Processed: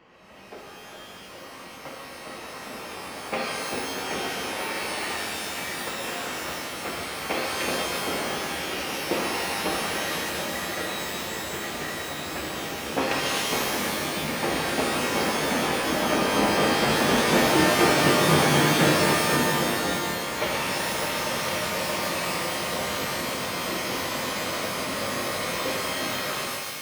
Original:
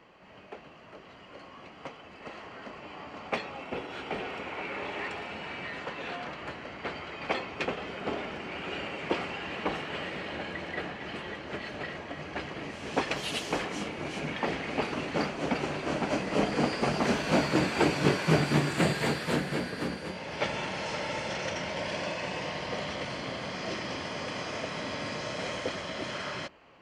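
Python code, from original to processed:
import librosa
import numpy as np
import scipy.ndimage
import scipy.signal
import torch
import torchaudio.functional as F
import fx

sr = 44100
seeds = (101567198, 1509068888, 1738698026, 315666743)

y = fx.rev_shimmer(x, sr, seeds[0], rt60_s=1.5, semitones=12, shimmer_db=-2, drr_db=-2.0)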